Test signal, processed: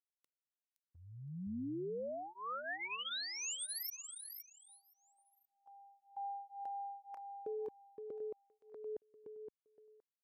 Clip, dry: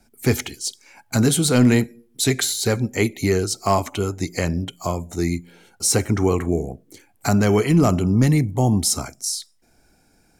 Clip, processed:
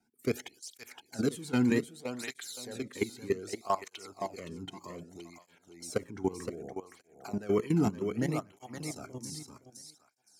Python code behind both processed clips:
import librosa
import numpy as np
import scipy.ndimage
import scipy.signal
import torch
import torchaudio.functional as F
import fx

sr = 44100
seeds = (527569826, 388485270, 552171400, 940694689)

y = fx.highpass(x, sr, hz=86.0, slope=6)
y = fx.high_shelf(y, sr, hz=4200.0, db=-4.5)
y = fx.level_steps(y, sr, step_db=17)
y = fx.echo_feedback(y, sr, ms=518, feedback_pct=22, wet_db=-6.5)
y = fx.flanger_cancel(y, sr, hz=0.64, depth_ms=1.8)
y = y * librosa.db_to_amplitude(-6.5)